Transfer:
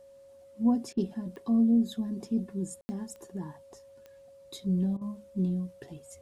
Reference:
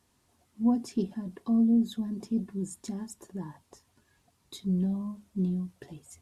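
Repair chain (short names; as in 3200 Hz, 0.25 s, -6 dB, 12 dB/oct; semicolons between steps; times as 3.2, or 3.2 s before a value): de-click; notch 550 Hz, Q 30; room tone fill 2.81–2.89; interpolate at 0.93/4.97, 42 ms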